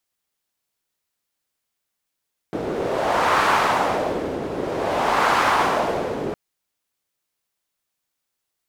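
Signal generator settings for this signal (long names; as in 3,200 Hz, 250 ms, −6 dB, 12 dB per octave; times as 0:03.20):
wind from filtered noise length 3.81 s, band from 380 Hz, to 1,100 Hz, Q 1.7, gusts 2, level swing 9 dB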